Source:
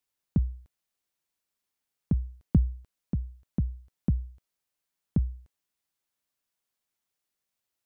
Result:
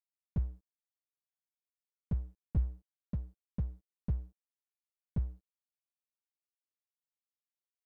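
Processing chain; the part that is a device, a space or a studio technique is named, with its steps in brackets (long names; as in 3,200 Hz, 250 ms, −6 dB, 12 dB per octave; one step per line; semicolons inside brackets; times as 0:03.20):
early transistor amplifier (dead-zone distortion −47 dBFS; slew-rate limiting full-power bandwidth 10 Hz)
level −5 dB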